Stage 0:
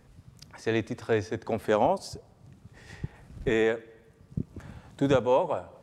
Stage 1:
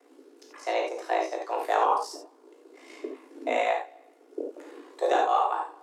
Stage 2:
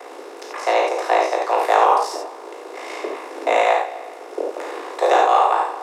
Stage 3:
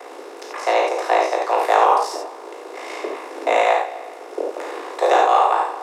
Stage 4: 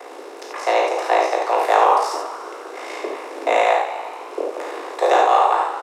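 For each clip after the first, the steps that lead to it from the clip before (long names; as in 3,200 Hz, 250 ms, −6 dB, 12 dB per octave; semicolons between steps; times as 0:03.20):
ring modulation 28 Hz; frequency shifter +250 Hz; reverb whose tail is shaped and stops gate 110 ms flat, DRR −0.5 dB
compressor on every frequency bin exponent 0.6; high-pass filter 360 Hz 24 dB per octave; level +6.5 dB
no processing that can be heard
echo with shifted repeats 145 ms, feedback 64%, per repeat +73 Hz, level −14.5 dB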